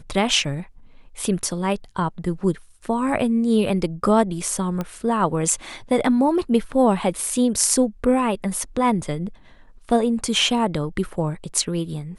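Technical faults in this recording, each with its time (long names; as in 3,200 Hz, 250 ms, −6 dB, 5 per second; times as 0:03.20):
0:04.81: click −14 dBFS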